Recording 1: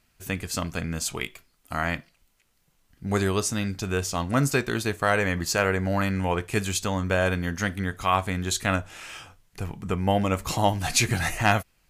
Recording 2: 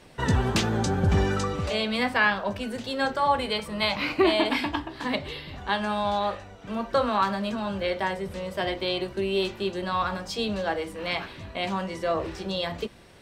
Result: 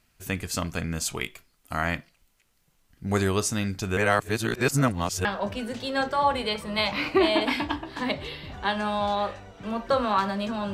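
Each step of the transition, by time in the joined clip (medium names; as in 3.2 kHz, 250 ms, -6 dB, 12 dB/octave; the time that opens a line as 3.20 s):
recording 1
3.97–5.25 s: reverse
5.25 s: go over to recording 2 from 2.29 s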